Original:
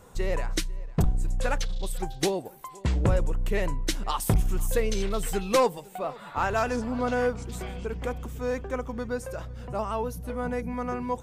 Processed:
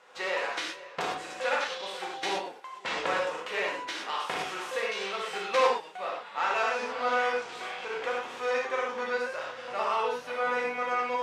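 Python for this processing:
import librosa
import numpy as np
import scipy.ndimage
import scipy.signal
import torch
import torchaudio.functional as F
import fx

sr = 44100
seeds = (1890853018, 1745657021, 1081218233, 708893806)

y = fx.envelope_flatten(x, sr, power=0.6)
y = fx.rider(y, sr, range_db=3, speed_s=2.0)
y = fx.bandpass_edges(y, sr, low_hz=620.0, high_hz=3000.0)
y = fx.rev_gated(y, sr, seeds[0], gate_ms=140, shape='flat', drr_db=-3.0)
y = y * 10.0 ** (-3.0 / 20.0)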